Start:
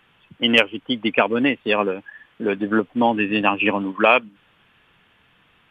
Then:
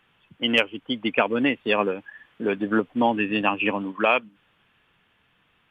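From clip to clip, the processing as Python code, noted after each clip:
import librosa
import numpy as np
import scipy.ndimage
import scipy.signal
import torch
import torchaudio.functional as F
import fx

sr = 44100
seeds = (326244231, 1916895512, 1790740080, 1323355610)

y = fx.rider(x, sr, range_db=10, speed_s=2.0)
y = F.gain(torch.from_numpy(y), -3.5).numpy()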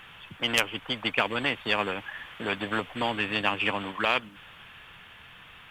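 y = fx.peak_eq(x, sr, hz=290.0, db=-9.0, octaves=2.0)
y = fx.spectral_comp(y, sr, ratio=2.0)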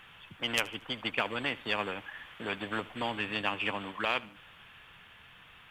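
y = fx.echo_feedback(x, sr, ms=76, feedback_pct=42, wet_db=-20.5)
y = F.gain(torch.from_numpy(y), -5.5).numpy()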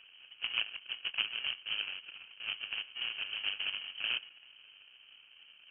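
y = fx.sample_hold(x, sr, seeds[0], rate_hz=1100.0, jitter_pct=20)
y = fx.air_absorb(y, sr, metres=490.0)
y = fx.freq_invert(y, sr, carrier_hz=3100)
y = F.gain(torch.from_numpy(y), -3.0).numpy()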